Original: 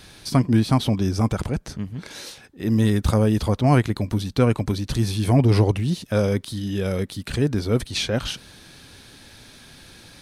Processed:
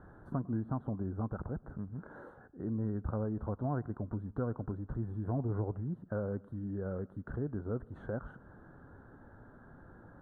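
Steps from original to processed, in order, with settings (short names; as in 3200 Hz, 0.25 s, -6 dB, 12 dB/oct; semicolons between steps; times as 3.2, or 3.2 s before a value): elliptic low-pass 1500 Hz, stop band 40 dB; compressor 2:1, threshold -37 dBFS, peak gain reduction 13.5 dB; on a send: reverb RT60 0.55 s, pre-delay 94 ms, DRR 22 dB; on the sum: gain -4.5 dB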